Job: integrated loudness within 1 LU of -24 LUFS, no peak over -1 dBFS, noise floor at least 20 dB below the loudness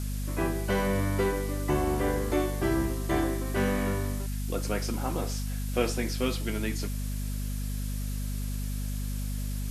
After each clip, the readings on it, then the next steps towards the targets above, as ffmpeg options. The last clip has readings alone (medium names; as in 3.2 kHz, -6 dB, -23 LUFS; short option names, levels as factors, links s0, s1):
hum 50 Hz; highest harmonic 250 Hz; hum level -30 dBFS; noise floor -32 dBFS; noise floor target -51 dBFS; loudness -30.5 LUFS; peak level -12.0 dBFS; loudness target -24.0 LUFS
-> -af "bandreject=f=50:t=h:w=6,bandreject=f=100:t=h:w=6,bandreject=f=150:t=h:w=6,bandreject=f=200:t=h:w=6,bandreject=f=250:t=h:w=6"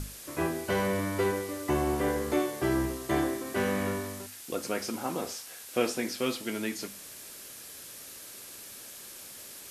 hum not found; noise floor -46 dBFS; noise floor target -51 dBFS
-> -af "afftdn=nr=6:nf=-46"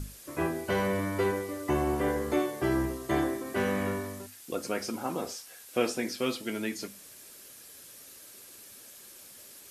noise floor -51 dBFS; noise floor target -52 dBFS
-> -af "afftdn=nr=6:nf=-51"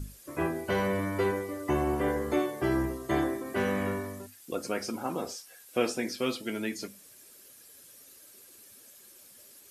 noise floor -54 dBFS; loudness -31.5 LUFS; peak level -13.5 dBFS; loudness target -24.0 LUFS
-> -af "volume=2.37"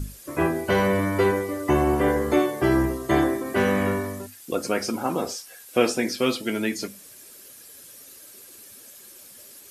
loudness -24.0 LUFS; peak level -6.0 dBFS; noise floor -47 dBFS